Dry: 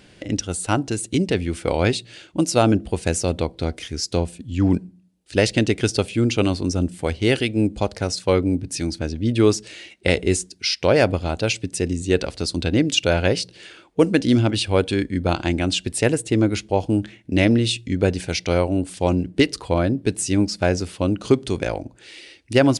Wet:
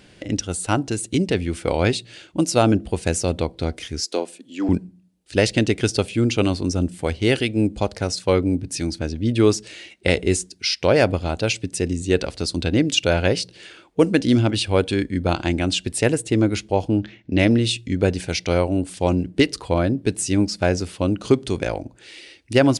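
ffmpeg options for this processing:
-filter_complex "[0:a]asettb=1/sr,asplit=3[a][b][c];[a]atrim=end=4.054[d];[b]atrim=start=4.05:end=4.69,asetpts=PTS-STARTPTS,afade=t=in:d=0.004:c=qsin,afade=t=out:st=0.636:d=0.004:c=qsin,highpass=f=290:w=0.5412,highpass=f=290:w=1.3066[e];[c]atrim=start=4.686[f];[d][e]acrossfade=d=0.004:c1=hsin:c2=qsin[g];[g][f]acrossfade=d=0.004:c1=qsin:c2=hsin,asplit=3[h][i][j];[h]afade=t=out:st=16.88:d=0.02[k];[i]lowpass=f=5.6k:w=0.5412,lowpass=f=5.6k:w=1.3066,afade=t=in:st=16.88:d=0.02,afade=t=out:st=17.38:d=0.02[l];[j]afade=t=in:st=17.38:d=0.02[m];[k][l][m]amix=inputs=3:normalize=0"

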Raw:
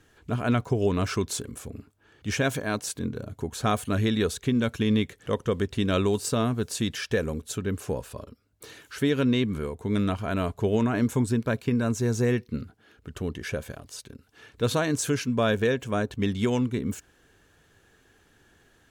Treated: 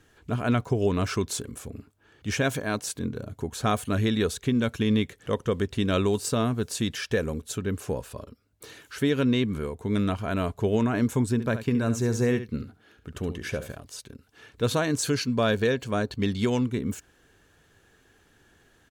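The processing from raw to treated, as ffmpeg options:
-filter_complex "[0:a]asplit=3[a][b][c];[a]afade=t=out:st=11.38:d=0.02[d];[b]aecho=1:1:70:0.266,afade=t=in:st=11.38:d=0.02,afade=t=out:st=13.76:d=0.02[e];[c]afade=t=in:st=13.76:d=0.02[f];[d][e][f]amix=inputs=3:normalize=0,asettb=1/sr,asplit=3[g][h][i];[g]atrim=end=15.034[j];[h]atrim=start=15.03:end=16.64,asetpts=PTS-STARTPTS,afade=t=in:d=0.004:c=qsin,afade=t=out:st=1.606:d=0.004:c=qsin,equalizer=f=4.4k:w=7.3:g=14[k];[i]atrim=start=16.636[l];[j][k]acrossfade=d=0.004:c1=hsin:c2=qsin[m];[m][l]acrossfade=d=0.004:c1=qsin:c2=hsin"

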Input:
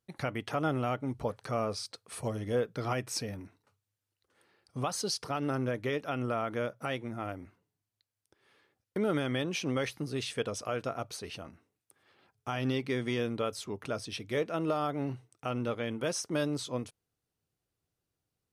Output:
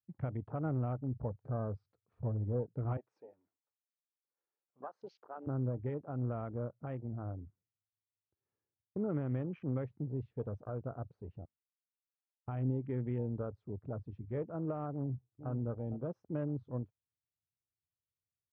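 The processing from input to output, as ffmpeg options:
-filter_complex "[0:a]asettb=1/sr,asplit=3[a][b][c];[a]atrim=end=2.974[d];[b]atrim=start=2.97:end=5.47,asetpts=PTS-STARTPTS,afade=t=in:d=0.004:c=qsin,afade=t=out:st=2.496:d=0.004:c=qsin,highpass=500[e];[c]atrim=start=5.466[f];[d][e]acrossfade=d=0.004:c1=hsin:c2=qsin[g];[g][f]acrossfade=d=0.004:c1=qsin:c2=hsin,asettb=1/sr,asplit=3[h][i][j];[h]atrim=end=11.454[k];[i]atrim=start=11.45:end=12.48,asetpts=PTS-STARTPTS,afade=t=in:d=0.004:c=qsin,afade=t=out:st=1.026:d=0.004:c=qsin,aderivative[l];[j]atrim=start=12.476[m];[k][l]acrossfade=d=0.004:c1=hsin:c2=qsin[n];[n][m]acrossfade=d=0.004:c1=qsin:c2=hsin,asplit=2[o][p];[p]afade=t=in:st=14.92:d=0.01,afade=t=out:st=15.5:d=0.01,aecho=0:1:460|920:0.334965|0.0334965[q];[o][q]amix=inputs=2:normalize=0,afwtdn=0.0141,lowpass=1.1k,equalizer=f=90:t=o:w=2:g=14,volume=-9dB"

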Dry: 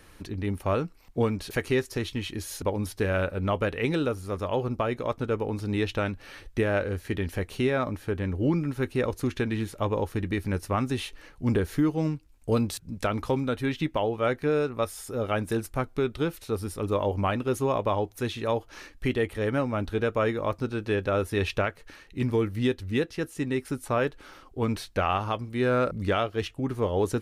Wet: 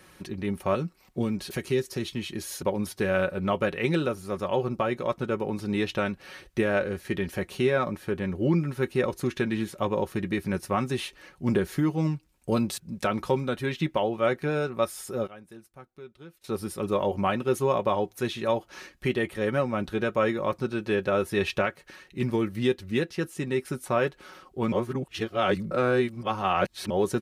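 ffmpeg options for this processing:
-filter_complex "[0:a]asettb=1/sr,asplit=3[a][b][c];[a]atrim=end=0.754[d];[b]atrim=start=0.75:end=2.35,asetpts=PTS-STARTPTS,afade=t=in:d=0.004:c=qsin,afade=t=out:st=1.596:d=0.004:c=qsin,acrossover=split=420|3000[e][f][g];[f]acompressor=threshold=-45dB:ratio=2:attack=3.2:release=140:knee=2.83:detection=peak[h];[e][h][g]amix=inputs=3:normalize=0[i];[c]atrim=start=2.346[j];[d][i]acrossfade=d=0.004:c1=hsin:c2=qsin[k];[k][j]acrossfade=d=0.004:c1=qsin:c2=hsin,asplit=5[l][m][n][o][p];[l]atrim=end=15.27,asetpts=PTS-STARTPTS,afade=t=out:st=15.09:d=0.18:c=log:silence=0.105925[q];[m]atrim=start=15.27:end=16.44,asetpts=PTS-STARTPTS,volume=-19.5dB[r];[n]atrim=start=16.44:end=24.722,asetpts=PTS-STARTPTS,afade=t=in:d=0.18:c=log:silence=0.105925[s];[o]atrim=start=24.718:end=26.902,asetpts=PTS-STARTPTS,areverse[t];[p]atrim=start=26.898[u];[q][r][s]concat=n=3:v=0:a=1[v];[v][t]acrossfade=d=0.004:c1=hsin:c2=hsin[w];[w][u]acrossfade=d=0.004:c1=hsin:c2=hsin,highpass=76,aecho=1:1:5.4:0.52"

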